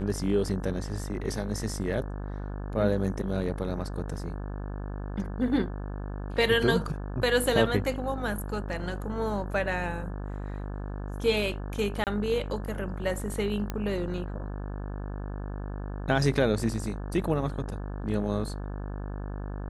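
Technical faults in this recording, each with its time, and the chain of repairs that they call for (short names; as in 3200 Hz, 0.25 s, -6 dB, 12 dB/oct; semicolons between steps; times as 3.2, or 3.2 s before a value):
buzz 50 Hz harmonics 35 -35 dBFS
12.04–12.07 gap 28 ms
13.7 pop -17 dBFS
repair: de-click; de-hum 50 Hz, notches 35; interpolate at 12.04, 28 ms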